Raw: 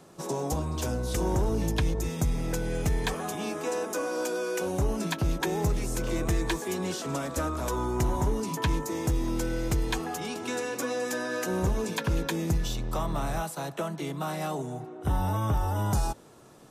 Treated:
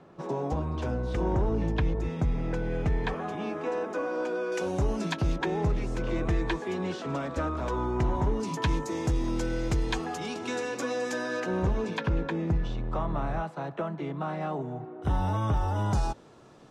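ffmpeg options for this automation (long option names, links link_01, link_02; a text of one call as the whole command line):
ffmpeg -i in.wav -af "asetnsamples=nb_out_samples=441:pad=0,asendcmd='4.52 lowpass f 5500;5.36 lowpass f 3100;8.4 lowpass f 6000;11.4 lowpass f 3300;12.09 lowpass f 2000;15.02 lowpass f 5100',lowpass=2400" out.wav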